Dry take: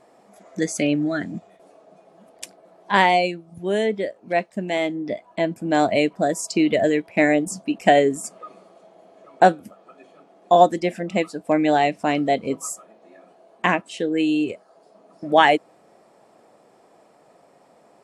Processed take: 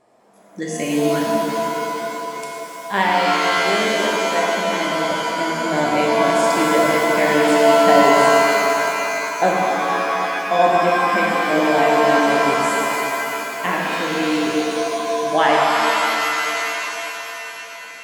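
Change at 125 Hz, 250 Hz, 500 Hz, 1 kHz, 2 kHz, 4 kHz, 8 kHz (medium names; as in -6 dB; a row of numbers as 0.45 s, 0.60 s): +0.5 dB, +1.0 dB, +4.5 dB, +5.5 dB, +7.5 dB, +7.5 dB, +6.5 dB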